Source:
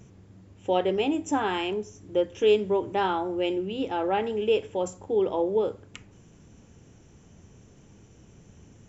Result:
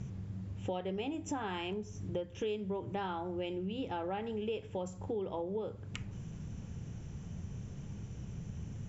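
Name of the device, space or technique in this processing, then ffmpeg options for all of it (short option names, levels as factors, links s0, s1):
jukebox: -af "lowpass=6900,lowshelf=f=220:t=q:w=1.5:g=7.5,acompressor=threshold=0.0126:ratio=5,volume=1.26"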